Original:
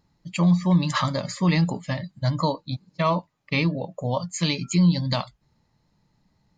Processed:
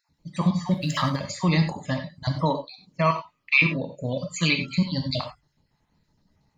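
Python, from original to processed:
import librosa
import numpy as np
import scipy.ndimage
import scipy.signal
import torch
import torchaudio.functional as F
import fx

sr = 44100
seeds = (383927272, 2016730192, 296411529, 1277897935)

y = fx.spec_dropout(x, sr, seeds[0], share_pct=31)
y = fx.backlash(y, sr, play_db=-46.0, at=(0.68, 1.16))
y = fx.graphic_eq_31(y, sr, hz=(800, 1250, 2500), db=(-12, 8, 12), at=(3.07, 4.61))
y = fx.rev_gated(y, sr, seeds[1], gate_ms=120, shape='flat', drr_db=5.5)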